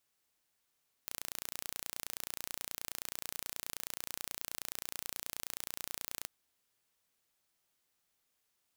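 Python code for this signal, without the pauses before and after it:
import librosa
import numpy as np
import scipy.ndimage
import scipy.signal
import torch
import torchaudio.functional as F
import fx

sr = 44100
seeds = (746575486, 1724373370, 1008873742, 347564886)

y = 10.0 ** (-12.0 / 20.0) * (np.mod(np.arange(round(5.18 * sr)), round(sr / 29.4)) == 0)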